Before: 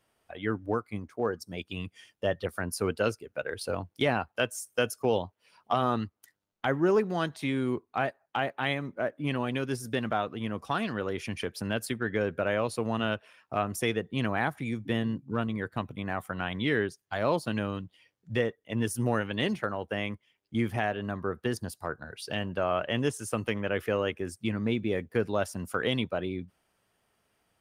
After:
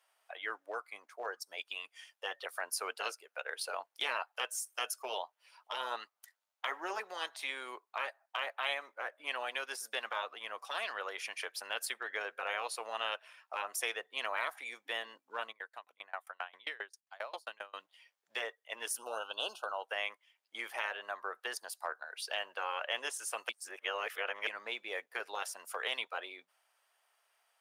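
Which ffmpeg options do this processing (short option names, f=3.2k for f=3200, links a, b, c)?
-filter_complex "[0:a]asplit=3[a][b][c];[a]afade=t=out:st=15.51:d=0.02[d];[b]aeval=exprs='val(0)*pow(10,-31*if(lt(mod(7.5*n/s,1),2*abs(7.5)/1000),1-mod(7.5*n/s,1)/(2*abs(7.5)/1000),(mod(7.5*n/s,1)-2*abs(7.5)/1000)/(1-2*abs(7.5)/1000))/20)':c=same,afade=t=in:st=15.51:d=0.02,afade=t=out:st=17.73:d=0.02[e];[c]afade=t=in:st=17.73:d=0.02[f];[d][e][f]amix=inputs=3:normalize=0,asettb=1/sr,asplit=3[g][h][i];[g]atrim=end=18.984[j];[h]atrim=start=18.98:end=19.85,asetpts=PTS-STARTPTS,afade=t=in:d=0.004:c=qsin,afade=t=out:st=0.866:d=0.004:c=qsin,asuperstop=centerf=2000:order=12:qfactor=1.8[k];[i]atrim=start=19.846[l];[j][k]acrossfade=d=0.004:c1=hsin:c2=qsin[m];[m][l]acrossfade=d=0.004:c1=qsin:c2=hsin,asplit=3[n][o][p];[n]atrim=end=23.492[q];[o]atrim=start=23.488:end=24.472,asetpts=PTS-STARTPTS,areverse[r];[p]atrim=start=24.468[s];[q][r]acrossfade=d=0.004:c1=hsin:c2=hsin[t];[t][s]acrossfade=d=0.004:c1=hsin:c2=hsin,highpass=f=670:w=0.5412,highpass=f=670:w=1.3066,afftfilt=real='re*lt(hypot(re,im),0.112)':imag='im*lt(hypot(re,im),0.112)':win_size=1024:overlap=0.75"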